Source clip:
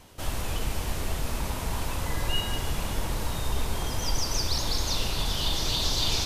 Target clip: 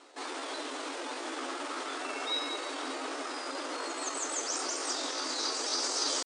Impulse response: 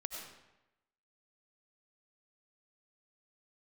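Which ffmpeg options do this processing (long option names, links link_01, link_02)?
-af "asetrate=58866,aresample=44100,atempo=0.749154,highshelf=frequency=6900:gain=-8.5,bandreject=frequency=392.1:width_type=h:width=4,bandreject=frequency=784.2:width_type=h:width=4,bandreject=frequency=1176.3:width_type=h:width=4,bandreject=frequency=1568.4:width_type=h:width=4,bandreject=frequency=1960.5:width_type=h:width=4,bandreject=frequency=2352.6:width_type=h:width=4,bandreject=frequency=2744.7:width_type=h:width=4,bandreject=frequency=3136.8:width_type=h:width=4,bandreject=frequency=3528.9:width_type=h:width=4,bandreject=frequency=3921:width_type=h:width=4,areverse,acompressor=mode=upward:threshold=-47dB:ratio=2.5,areverse,afftfilt=real='re*between(b*sr/4096,250,9800)':imag='im*between(b*sr/4096,250,9800)':win_size=4096:overlap=0.75"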